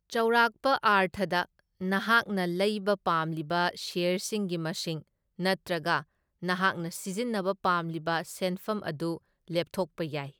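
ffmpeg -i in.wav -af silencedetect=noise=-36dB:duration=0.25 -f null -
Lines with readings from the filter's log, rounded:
silence_start: 1.43
silence_end: 1.81 | silence_duration: 0.38
silence_start: 5.00
silence_end: 5.39 | silence_duration: 0.40
silence_start: 6.01
silence_end: 6.43 | silence_duration: 0.42
silence_start: 9.17
silence_end: 9.50 | silence_duration: 0.33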